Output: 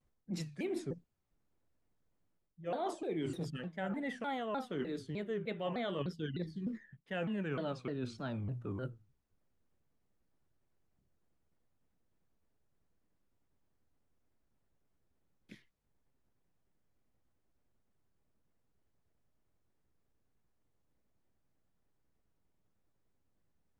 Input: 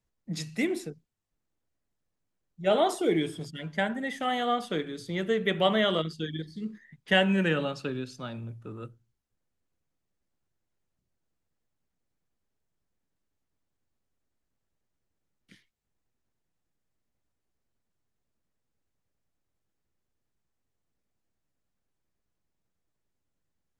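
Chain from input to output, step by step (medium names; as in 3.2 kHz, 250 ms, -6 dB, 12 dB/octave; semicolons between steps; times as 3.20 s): treble shelf 2.2 kHz -10 dB; reverse; compression 6:1, threshold -40 dBFS, peak gain reduction 19.5 dB; reverse; vibrato with a chosen wave saw down 3.3 Hz, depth 250 cents; trim +4 dB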